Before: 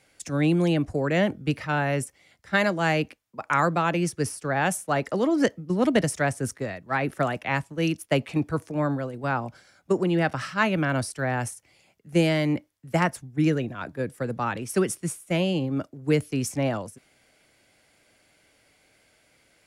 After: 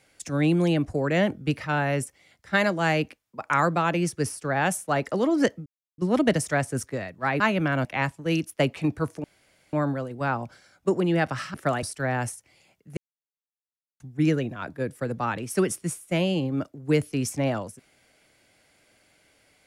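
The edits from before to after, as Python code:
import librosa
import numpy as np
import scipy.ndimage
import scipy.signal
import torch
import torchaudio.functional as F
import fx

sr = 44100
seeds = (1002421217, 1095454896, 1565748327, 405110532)

y = fx.edit(x, sr, fx.insert_silence(at_s=5.66, length_s=0.32),
    fx.swap(start_s=7.08, length_s=0.29, other_s=10.57, other_length_s=0.45),
    fx.insert_room_tone(at_s=8.76, length_s=0.49),
    fx.silence(start_s=12.16, length_s=1.03), tone=tone)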